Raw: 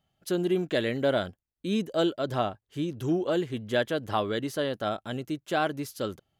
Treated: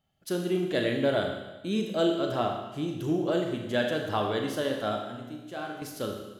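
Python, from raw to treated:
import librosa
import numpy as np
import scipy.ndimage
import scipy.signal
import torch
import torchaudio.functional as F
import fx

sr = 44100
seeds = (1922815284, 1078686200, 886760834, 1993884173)

y = fx.comb_fb(x, sr, f0_hz=60.0, decay_s=0.88, harmonics='all', damping=0.0, mix_pct=80, at=(5.05, 5.82))
y = fx.rev_schroeder(y, sr, rt60_s=1.1, comb_ms=26, drr_db=2.0)
y = y * 10.0 ** (-2.0 / 20.0)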